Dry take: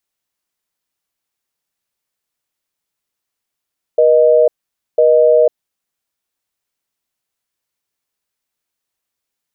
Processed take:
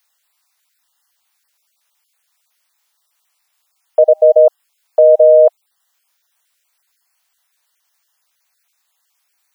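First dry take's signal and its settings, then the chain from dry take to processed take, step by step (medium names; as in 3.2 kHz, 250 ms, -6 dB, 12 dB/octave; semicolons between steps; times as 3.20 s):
call progress tone busy tone, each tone -9.5 dBFS 1.79 s
random holes in the spectrogram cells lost 23%; high-pass 720 Hz 24 dB/octave; loudness maximiser +14.5 dB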